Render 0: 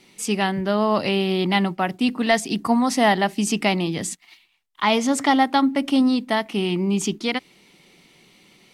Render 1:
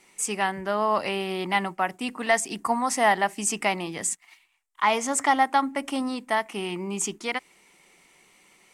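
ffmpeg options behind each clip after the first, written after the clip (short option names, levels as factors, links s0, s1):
-af "equalizer=f=125:t=o:w=1:g=-9,equalizer=f=250:t=o:w=1:g=-5,equalizer=f=1000:t=o:w=1:g=5,equalizer=f=2000:t=o:w=1:g=4,equalizer=f=4000:t=o:w=1:g=-8,equalizer=f=8000:t=o:w=1:g=10,volume=0.562"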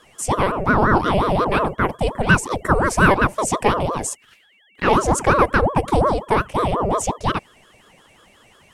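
-af "aeval=exprs='val(0)+0.002*sin(2*PI*2500*n/s)':c=same,lowshelf=f=770:t=q:w=1.5:g=10,aeval=exprs='val(0)*sin(2*PI*530*n/s+530*0.65/5.6*sin(2*PI*5.6*n/s))':c=same,volume=1.5"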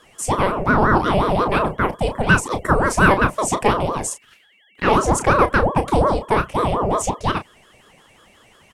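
-filter_complex "[0:a]asplit=2[s0][s1];[s1]adelay=32,volume=0.316[s2];[s0][s2]amix=inputs=2:normalize=0"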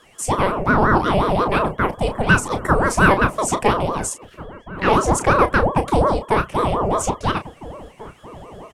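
-filter_complex "[0:a]asplit=2[s0][s1];[s1]adelay=1691,volume=0.141,highshelf=f=4000:g=-38[s2];[s0][s2]amix=inputs=2:normalize=0"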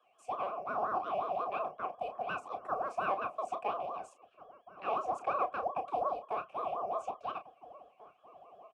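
-filter_complex "[0:a]asplit=3[s0][s1][s2];[s0]bandpass=f=730:t=q:w=8,volume=1[s3];[s1]bandpass=f=1090:t=q:w=8,volume=0.501[s4];[s2]bandpass=f=2440:t=q:w=8,volume=0.355[s5];[s3][s4][s5]amix=inputs=3:normalize=0,acrossover=split=220|490|3300[s6][s7][s8][s9];[s6]acrusher=samples=8:mix=1:aa=0.000001[s10];[s10][s7][s8][s9]amix=inputs=4:normalize=0,volume=0.422"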